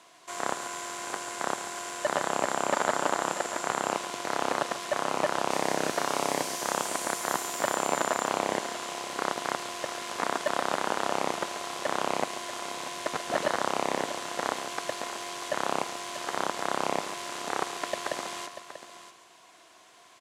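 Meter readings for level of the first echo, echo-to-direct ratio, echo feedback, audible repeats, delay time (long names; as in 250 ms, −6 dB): −12.5 dB, −9.0 dB, repeats not evenly spaced, 3, 139 ms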